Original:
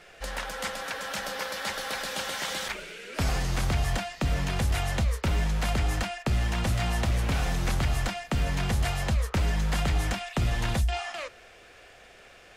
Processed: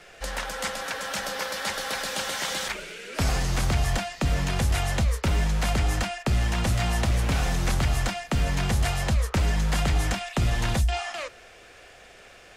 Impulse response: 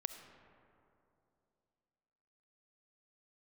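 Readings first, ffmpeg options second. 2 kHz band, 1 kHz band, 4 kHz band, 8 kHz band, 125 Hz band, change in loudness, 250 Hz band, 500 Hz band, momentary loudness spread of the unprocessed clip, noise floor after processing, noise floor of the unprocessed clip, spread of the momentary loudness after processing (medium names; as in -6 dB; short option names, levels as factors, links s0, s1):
+2.5 dB, +2.5 dB, +3.0 dB, +4.5 dB, +2.5 dB, +2.5 dB, +2.5 dB, +2.5 dB, 6 LU, -50 dBFS, -52 dBFS, 6 LU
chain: -filter_complex "[0:a]highshelf=f=8400:g=-8,acrossover=split=220|5600[s0][s1][s2];[s2]acontrast=67[s3];[s0][s1][s3]amix=inputs=3:normalize=0,volume=1.33"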